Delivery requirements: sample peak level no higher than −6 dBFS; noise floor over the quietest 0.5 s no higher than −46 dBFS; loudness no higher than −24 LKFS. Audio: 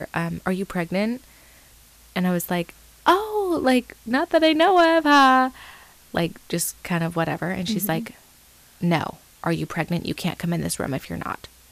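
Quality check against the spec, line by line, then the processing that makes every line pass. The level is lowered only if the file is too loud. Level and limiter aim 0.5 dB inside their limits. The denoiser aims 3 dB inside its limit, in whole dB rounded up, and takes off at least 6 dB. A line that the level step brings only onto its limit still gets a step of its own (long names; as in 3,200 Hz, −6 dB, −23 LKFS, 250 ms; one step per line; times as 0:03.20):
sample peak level −8.0 dBFS: in spec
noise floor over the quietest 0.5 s −52 dBFS: in spec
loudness −22.5 LKFS: out of spec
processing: level −2 dB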